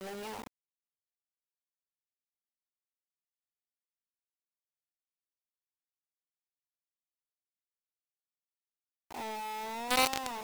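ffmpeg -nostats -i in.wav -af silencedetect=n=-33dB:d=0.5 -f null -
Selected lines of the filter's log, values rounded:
silence_start: 0.00
silence_end: 9.91 | silence_duration: 9.91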